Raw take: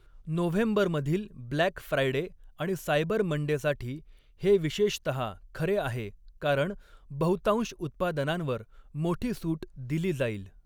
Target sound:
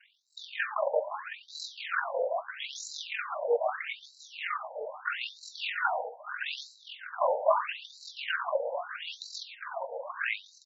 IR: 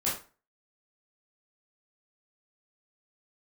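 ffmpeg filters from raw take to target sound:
-filter_complex "[0:a]asplit=2[link_01][link_02];[link_02]highpass=frequency=720:poles=1,volume=26dB,asoftclip=type=tanh:threshold=-11.5dB[link_03];[link_01][link_03]amix=inputs=2:normalize=0,lowpass=frequency=2500:poles=1,volume=-6dB,aeval=exprs='val(0)*sin(2*PI*22*n/s)':channel_layout=same,flanger=delay=8:depth=5.5:regen=62:speed=0.3:shape=triangular,aecho=1:1:720|1440|2160|2880|3600|4320|5040:0.376|0.218|0.126|0.0733|0.0425|0.0247|0.0143,asplit=2[link_04][link_05];[1:a]atrim=start_sample=2205,asetrate=29988,aresample=44100[link_06];[link_05][link_06]afir=irnorm=-1:irlink=0,volume=-17dB[link_07];[link_04][link_07]amix=inputs=2:normalize=0,afftfilt=real='re*between(b*sr/1024,650*pow(5500/650,0.5+0.5*sin(2*PI*0.78*pts/sr))/1.41,650*pow(5500/650,0.5+0.5*sin(2*PI*0.78*pts/sr))*1.41)':imag='im*between(b*sr/1024,650*pow(5500/650,0.5+0.5*sin(2*PI*0.78*pts/sr))/1.41,650*pow(5500/650,0.5+0.5*sin(2*PI*0.78*pts/sr))*1.41)':win_size=1024:overlap=0.75,volume=4dB"

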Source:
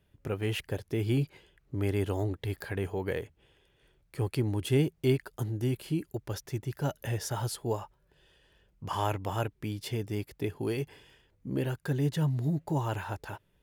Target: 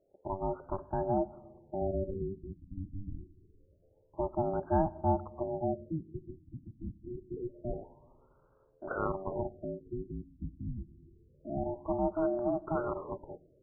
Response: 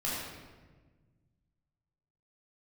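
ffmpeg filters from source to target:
-filter_complex "[0:a]aeval=exprs='val(0)*sin(2*PI*480*n/s)':channel_layout=same,asplit=2[link_01][link_02];[1:a]atrim=start_sample=2205[link_03];[link_02][link_03]afir=irnorm=-1:irlink=0,volume=-23.5dB[link_04];[link_01][link_04]amix=inputs=2:normalize=0,afftfilt=real='re*lt(b*sr/1024,310*pow(1700/310,0.5+0.5*sin(2*PI*0.26*pts/sr)))':imag='im*lt(b*sr/1024,310*pow(1700/310,0.5+0.5*sin(2*PI*0.26*pts/sr)))':win_size=1024:overlap=0.75"

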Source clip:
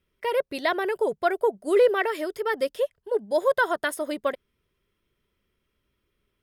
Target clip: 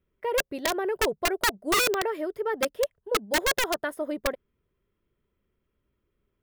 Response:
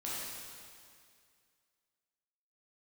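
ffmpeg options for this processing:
-af "equalizer=frequency=6700:width=0.32:gain=-15,aeval=exprs='(mod(7.94*val(0)+1,2)-1)/7.94':channel_layout=same"

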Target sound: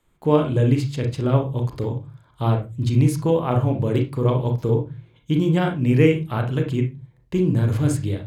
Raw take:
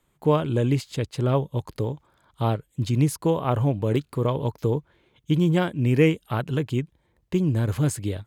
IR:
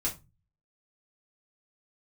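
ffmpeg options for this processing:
-filter_complex "[0:a]highshelf=frequency=11000:gain=-4,asplit=2[link_01][link_02];[1:a]atrim=start_sample=2205,lowpass=3700,adelay=32[link_03];[link_02][link_03]afir=irnorm=-1:irlink=0,volume=-7.5dB[link_04];[link_01][link_04]amix=inputs=2:normalize=0"

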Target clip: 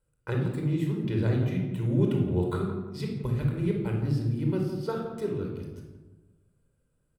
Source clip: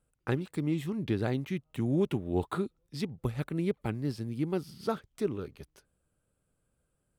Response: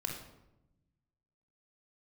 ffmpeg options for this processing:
-filter_complex "[0:a]asplit=2[link_01][link_02];[link_02]adelay=169,lowpass=frequency=1100:poles=1,volume=-8dB,asplit=2[link_03][link_04];[link_04]adelay=169,lowpass=frequency=1100:poles=1,volume=0.43,asplit=2[link_05][link_06];[link_06]adelay=169,lowpass=frequency=1100:poles=1,volume=0.43,asplit=2[link_07][link_08];[link_08]adelay=169,lowpass=frequency=1100:poles=1,volume=0.43,asplit=2[link_09][link_10];[link_10]adelay=169,lowpass=frequency=1100:poles=1,volume=0.43[link_11];[link_01][link_03][link_05][link_07][link_09][link_11]amix=inputs=6:normalize=0[link_12];[1:a]atrim=start_sample=2205[link_13];[link_12][link_13]afir=irnorm=-1:irlink=0,volume=-1.5dB"

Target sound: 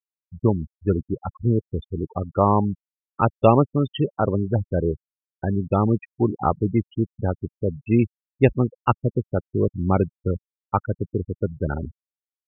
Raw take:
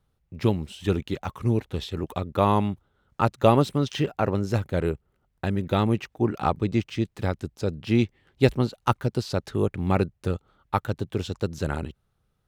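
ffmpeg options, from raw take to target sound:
ffmpeg -i in.wav -af "aresample=8000,aresample=44100,afftfilt=real='re*gte(hypot(re,im),0.0794)':imag='im*gte(hypot(re,im),0.0794)':win_size=1024:overlap=0.75,volume=3dB" out.wav

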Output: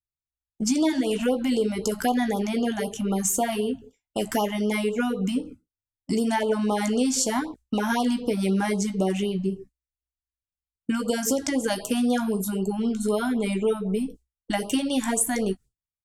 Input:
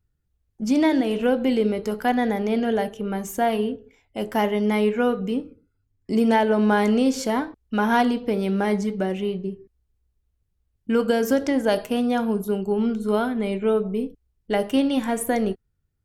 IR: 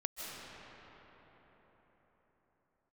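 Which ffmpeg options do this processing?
-filter_complex "[0:a]agate=range=-33dB:threshold=-38dB:ratio=3:detection=peak,equalizer=frequency=7800:width_type=o:width=1.2:gain=14,acompressor=threshold=-28dB:ratio=3,asplit=2[link_01][link_02];[link_02]adelay=16,volume=-11dB[link_03];[link_01][link_03]amix=inputs=2:normalize=0,afftfilt=real='re*(1-between(b*sr/1024,390*pow(2000/390,0.5+0.5*sin(2*PI*3.9*pts/sr))/1.41,390*pow(2000/390,0.5+0.5*sin(2*PI*3.9*pts/sr))*1.41))':imag='im*(1-between(b*sr/1024,390*pow(2000/390,0.5+0.5*sin(2*PI*3.9*pts/sr))/1.41,390*pow(2000/390,0.5+0.5*sin(2*PI*3.9*pts/sr))*1.41))':win_size=1024:overlap=0.75,volume=5dB"

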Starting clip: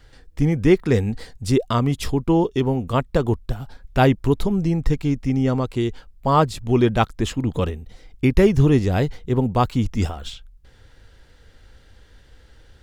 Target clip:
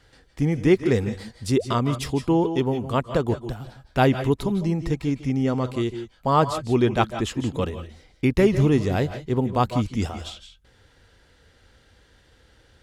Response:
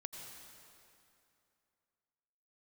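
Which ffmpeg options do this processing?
-filter_complex "[0:a]highpass=frequency=100:poles=1[link_01];[1:a]atrim=start_sample=2205,atrim=end_sample=4410,asetrate=24255,aresample=44100[link_02];[link_01][link_02]afir=irnorm=-1:irlink=0"

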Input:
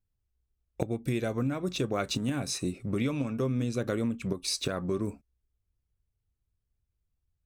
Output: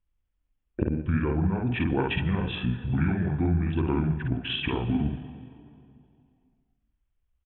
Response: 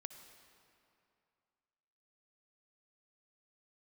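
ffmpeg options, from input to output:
-filter_complex "[0:a]aresample=11025,aresample=44100,asplit=2[link_01][link_02];[1:a]atrim=start_sample=2205,adelay=55[link_03];[link_02][link_03]afir=irnorm=-1:irlink=0,volume=2.5dB[link_04];[link_01][link_04]amix=inputs=2:normalize=0,asetrate=29433,aresample=44100,atempo=1.49831,volume=3dB"

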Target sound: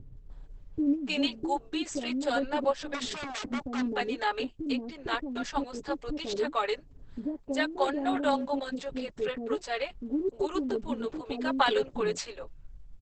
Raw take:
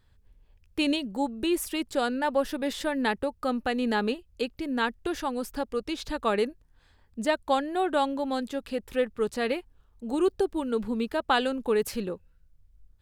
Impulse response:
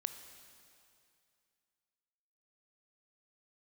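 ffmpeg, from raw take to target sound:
-filter_complex "[0:a]aecho=1:1:7.1:0.76,acrossover=split=870[link_01][link_02];[link_01]acompressor=mode=upward:threshold=-29dB:ratio=2.5[link_03];[link_03][link_02]amix=inputs=2:normalize=0,asettb=1/sr,asplit=3[link_04][link_05][link_06];[link_04]atrim=end=2.644[link_07];[link_05]atrim=start=2.64:end=3.52,asetpts=PTS-STARTPTS,afade=type=in:duration=0.004:curve=qsin,afade=type=out:start_time=0.876:duration=0.004:curve=qsin,aeval=exprs='0.0473*(abs(mod(val(0)/0.0473+3,4)-2)-1)':channel_layout=same[link_08];[link_06]atrim=start=3.516[link_09];[link_07][link_08]acrossfade=duration=0.004:curve1=hsin:curve2=qsin[link_10];[link_10][link_09]acrossfade=duration=0.004:curve1=qsin:curve2=hsin,acrossover=split=450[link_11][link_12];[link_12]adelay=300[link_13];[link_11][link_13]amix=inputs=2:normalize=0,volume=-2.5dB" -ar 48000 -c:a libopus -b:a 10k

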